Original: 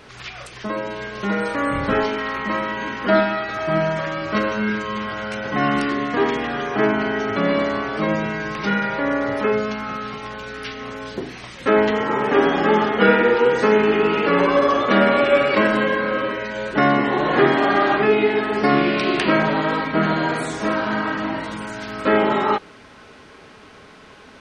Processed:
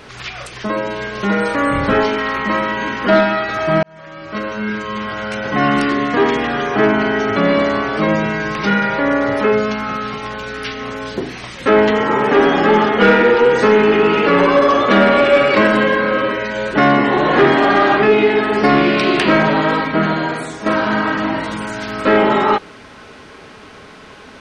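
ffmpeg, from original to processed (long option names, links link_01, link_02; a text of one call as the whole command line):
ffmpeg -i in.wav -filter_complex "[0:a]asplit=3[link_01][link_02][link_03];[link_01]atrim=end=3.83,asetpts=PTS-STARTPTS,afade=type=out:start_time=3.826:duration=0.004:curve=hsin[link_04];[link_02]atrim=start=3.83:end=20.66,asetpts=PTS-STARTPTS,afade=type=in:duration=2.39:curve=qsin,afade=type=out:start_time=15.85:duration=0.98:silence=0.334965[link_05];[link_03]atrim=start=20.66,asetpts=PTS-STARTPTS,afade=type=in:duration=0.004:curve=hsin:silence=0.334965[link_06];[link_04][link_05][link_06]concat=n=3:v=0:a=1,acontrast=80,volume=-1dB" out.wav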